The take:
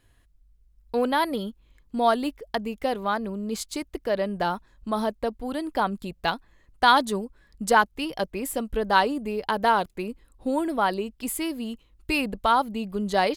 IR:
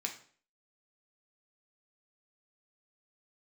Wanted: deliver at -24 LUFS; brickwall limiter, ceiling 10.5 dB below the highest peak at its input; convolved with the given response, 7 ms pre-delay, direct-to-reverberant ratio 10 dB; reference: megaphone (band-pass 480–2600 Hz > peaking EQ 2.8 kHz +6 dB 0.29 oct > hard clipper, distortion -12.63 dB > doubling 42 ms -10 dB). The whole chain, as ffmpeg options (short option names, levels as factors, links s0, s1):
-filter_complex "[0:a]alimiter=limit=0.178:level=0:latency=1,asplit=2[s0][s1];[1:a]atrim=start_sample=2205,adelay=7[s2];[s1][s2]afir=irnorm=-1:irlink=0,volume=0.282[s3];[s0][s3]amix=inputs=2:normalize=0,highpass=480,lowpass=2600,equalizer=f=2800:t=o:w=0.29:g=6,asoftclip=type=hard:threshold=0.0794,asplit=2[s4][s5];[s5]adelay=42,volume=0.316[s6];[s4][s6]amix=inputs=2:normalize=0,volume=2.37"